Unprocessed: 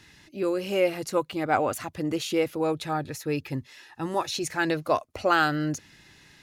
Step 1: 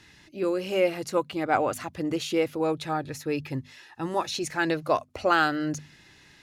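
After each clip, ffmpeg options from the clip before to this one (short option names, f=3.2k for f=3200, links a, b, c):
-af "highshelf=f=11k:g=-7,bandreject=f=50:t=h:w=6,bandreject=f=100:t=h:w=6,bandreject=f=150:t=h:w=6,bandreject=f=200:t=h:w=6,bandreject=f=250:t=h:w=6"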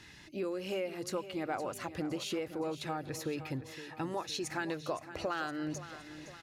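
-af "acompressor=threshold=-34dB:ratio=6,aecho=1:1:515|1030|1545|2060|2575:0.224|0.119|0.0629|0.0333|0.0177"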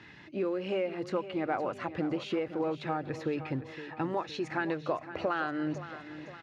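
-filter_complex "[0:a]asplit=2[a][b];[b]acrusher=bits=3:mode=log:mix=0:aa=0.000001,volume=-11dB[c];[a][c]amix=inputs=2:normalize=0,highpass=110,lowpass=2.5k,volume=2.5dB"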